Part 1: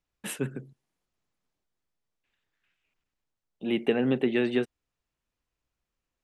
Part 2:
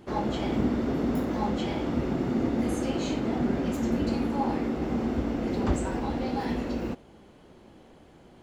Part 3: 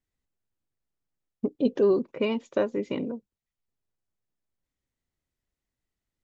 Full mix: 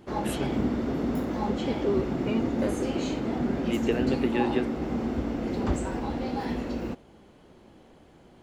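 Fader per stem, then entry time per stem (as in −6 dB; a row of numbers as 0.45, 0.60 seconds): −2.5, −1.0, −6.0 decibels; 0.00, 0.00, 0.05 seconds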